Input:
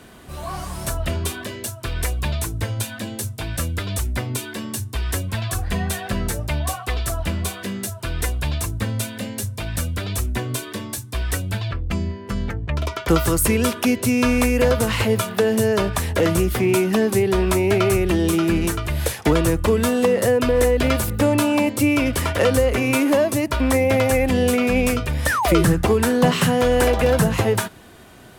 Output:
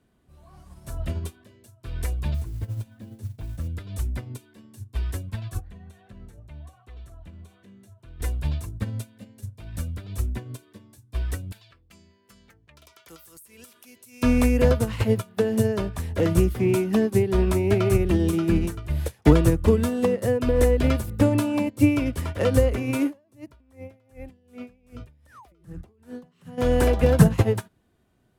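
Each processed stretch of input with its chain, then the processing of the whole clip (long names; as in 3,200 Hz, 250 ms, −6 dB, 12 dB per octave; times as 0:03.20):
0:02.34–0:03.67: spectral tilt −2 dB per octave + downward compressor 2.5 to 1, threshold −24 dBFS + noise that follows the level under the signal 19 dB
0:05.60–0:08.20: high-shelf EQ 8,900 Hz −9 dB + notch filter 4,900 Hz, Q 7.9 + downward compressor 3 to 1, threshold −27 dBFS
0:11.52–0:14.23: spectral tilt +4.5 dB per octave + downward compressor 8 to 1, threshold −20 dBFS
0:23.07–0:26.58: downward compressor 10 to 1, threshold −19 dBFS + tremolo with a sine in dB 2.6 Hz, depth 18 dB
whole clip: low-shelf EQ 410 Hz +10 dB; expander for the loud parts 2.5 to 1, over −23 dBFS; level −2 dB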